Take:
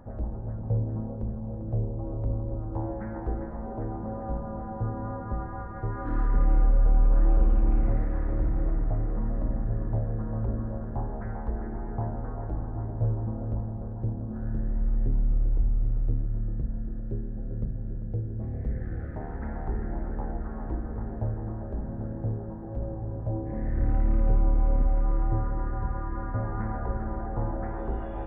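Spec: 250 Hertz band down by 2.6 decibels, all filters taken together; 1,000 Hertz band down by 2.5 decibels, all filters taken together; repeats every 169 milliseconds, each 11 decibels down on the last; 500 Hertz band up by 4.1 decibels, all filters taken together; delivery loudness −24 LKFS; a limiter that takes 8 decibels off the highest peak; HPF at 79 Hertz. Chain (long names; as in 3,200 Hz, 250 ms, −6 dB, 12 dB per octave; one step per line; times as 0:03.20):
high-pass filter 79 Hz
parametric band 250 Hz −5.5 dB
parametric band 500 Hz +8 dB
parametric band 1,000 Hz −7 dB
brickwall limiter −25.5 dBFS
repeating echo 169 ms, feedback 28%, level −11 dB
level +12 dB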